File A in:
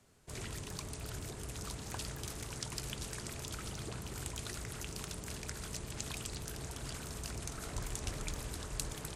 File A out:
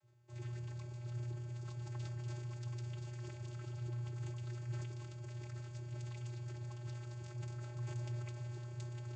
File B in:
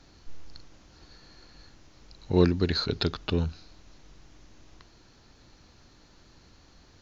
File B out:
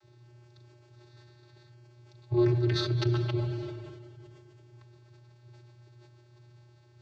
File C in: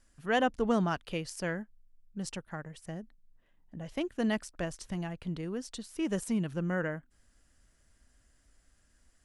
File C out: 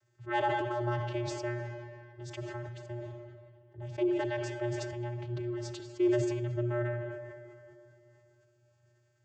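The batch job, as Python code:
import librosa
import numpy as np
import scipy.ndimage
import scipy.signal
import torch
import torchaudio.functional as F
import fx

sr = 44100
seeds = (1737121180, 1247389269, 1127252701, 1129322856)

y = fx.low_shelf(x, sr, hz=240.0, db=-4.5)
y = fx.vocoder(y, sr, bands=16, carrier='square', carrier_hz=120.0)
y = fx.rev_freeverb(y, sr, rt60_s=3.3, hf_ratio=0.7, predelay_ms=5, drr_db=8.0)
y = fx.sustainer(y, sr, db_per_s=32.0)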